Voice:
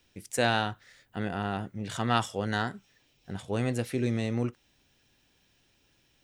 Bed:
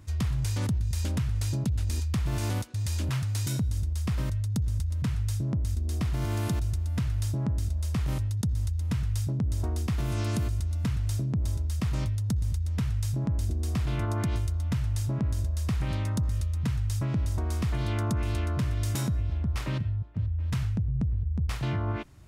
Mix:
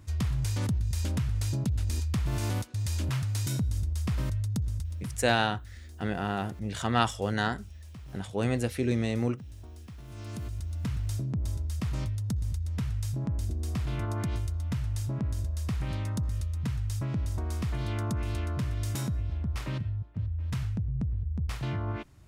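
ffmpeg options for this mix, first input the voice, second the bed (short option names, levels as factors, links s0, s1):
-filter_complex "[0:a]adelay=4850,volume=1.12[s0];[1:a]volume=4.47,afade=t=out:st=4.45:d=0.91:silence=0.158489,afade=t=in:st=10.06:d=0.9:silence=0.199526[s1];[s0][s1]amix=inputs=2:normalize=0"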